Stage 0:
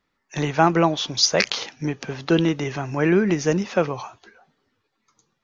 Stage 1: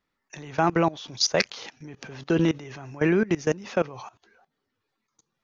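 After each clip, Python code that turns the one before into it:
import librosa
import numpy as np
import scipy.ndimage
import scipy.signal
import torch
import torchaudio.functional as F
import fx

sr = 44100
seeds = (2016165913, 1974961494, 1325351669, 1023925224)

y = fx.level_steps(x, sr, step_db=20)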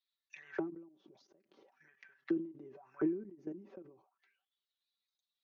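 y = fx.auto_wah(x, sr, base_hz=310.0, top_hz=3900.0, q=7.8, full_db=-27.5, direction='down')
y = y + 0.66 * np.pad(y, (int(5.2 * sr / 1000.0), 0))[:len(y)]
y = fx.end_taper(y, sr, db_per_s=110.0)
y = y * 10.0 ** (2.0 / 20.0)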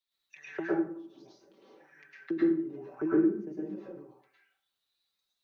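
y = fx.rev_plate(x, sr, seeds[0], rt60_s=0.51, hf_ratio=0.65, predelay_ms=95, drr_db=-7.5)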